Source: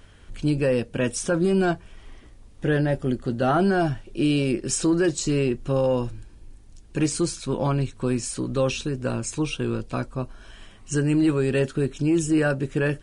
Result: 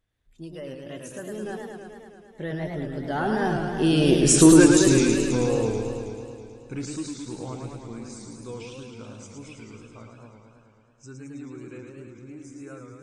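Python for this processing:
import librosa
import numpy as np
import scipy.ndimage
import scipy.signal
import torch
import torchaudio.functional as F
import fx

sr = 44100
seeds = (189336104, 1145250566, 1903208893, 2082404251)

y = fx.doppler_pass(x, sr, speed_mps=32, closest_m=9.2, pass_at_s=4.41)
y = fx.noise_reduce_blind(y, sr, reduce_db=11)
y = fx.echo_warbled(y, sr, ms=108, feedback_pct=76, rate_hz=2.8, cents=153, wet_db=-4.5)
y = y * 10.0 ** (7.0 / 20.0)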